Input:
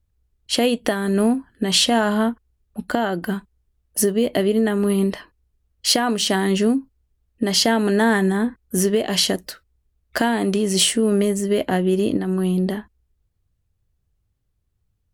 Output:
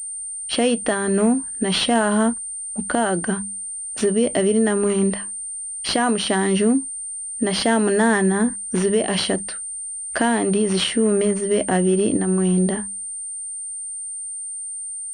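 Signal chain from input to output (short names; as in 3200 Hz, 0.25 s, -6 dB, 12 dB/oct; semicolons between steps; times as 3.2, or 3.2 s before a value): notches 50/100/150/200 Hz; in parallel at +2 dB: limiter -15 dBFS, peak gain reduction 10 dB; on the sum: pulse-width modulation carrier 8900 Hz; gain -4.5 dB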